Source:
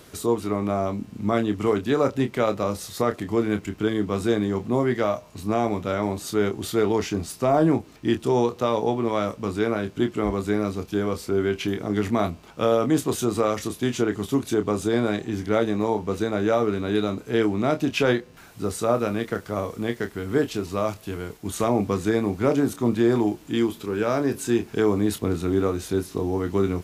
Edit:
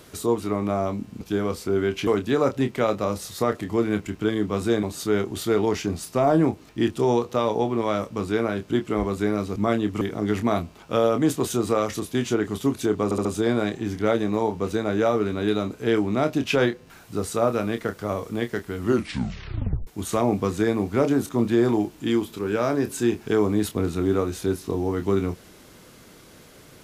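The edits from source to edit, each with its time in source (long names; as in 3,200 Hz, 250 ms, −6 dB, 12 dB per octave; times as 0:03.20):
0:01.21–0:01.66: swap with 0:10.83–0:11.69
0:04.42–0:06.10: remove
0:14.72: stutter 0.07 s, 4 plays
0:20.23: tape stop 1.11 s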